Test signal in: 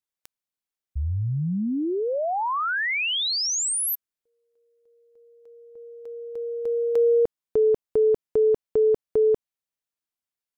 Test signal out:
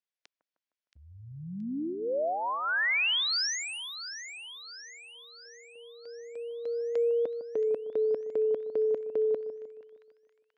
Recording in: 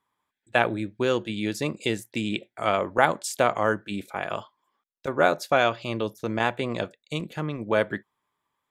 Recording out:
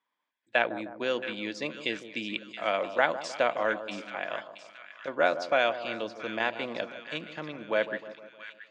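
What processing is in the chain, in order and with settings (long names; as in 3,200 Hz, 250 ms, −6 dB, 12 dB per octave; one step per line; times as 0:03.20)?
loudspeaker in its box 350–5,300 Hz, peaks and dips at 400 Hz −9 dB, 830 Hz −6 dB, 1,200 Hz −7 dB, 3,900 Hz −3 dB
echo with a time of its own for lows and highs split 1,300 Hz, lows 154 ms, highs 674 ms, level −11.5 dB
level −1 dB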